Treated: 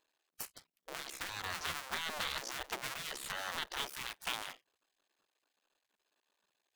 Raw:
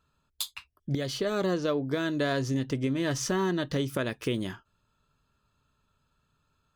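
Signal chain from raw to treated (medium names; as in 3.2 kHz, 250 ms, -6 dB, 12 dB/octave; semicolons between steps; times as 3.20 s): cycle switcher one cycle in 2, muted; spectral gate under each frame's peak -15 dB weak; trim +1 dB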